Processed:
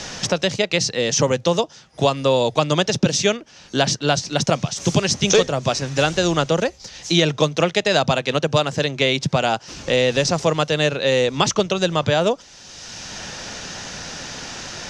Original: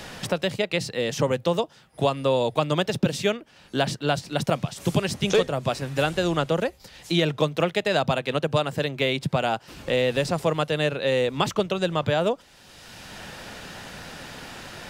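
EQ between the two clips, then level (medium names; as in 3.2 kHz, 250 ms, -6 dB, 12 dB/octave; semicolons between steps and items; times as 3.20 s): resonant low-pass 6.1 kHz, resonance Q 4.4; +4.5 dB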